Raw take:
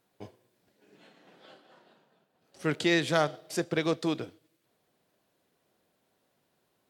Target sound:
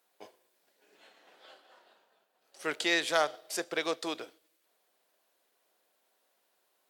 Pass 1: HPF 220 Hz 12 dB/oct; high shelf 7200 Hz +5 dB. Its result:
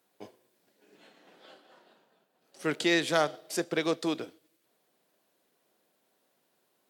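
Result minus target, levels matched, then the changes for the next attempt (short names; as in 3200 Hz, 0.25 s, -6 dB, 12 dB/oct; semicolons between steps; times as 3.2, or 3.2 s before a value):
250 Hz band +6.0 dB
change: HPF 530 Hz 12 dB/oct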